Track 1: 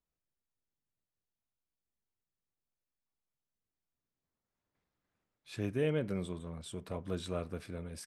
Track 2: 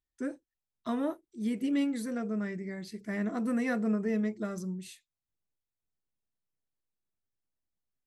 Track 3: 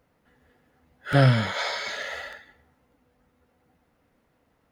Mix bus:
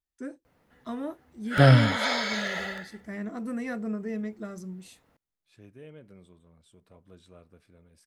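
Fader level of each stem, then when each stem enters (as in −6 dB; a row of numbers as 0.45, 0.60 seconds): −15.5, −3.0, +1.5 decibels; 0.00, 0.00, 0.45 seconds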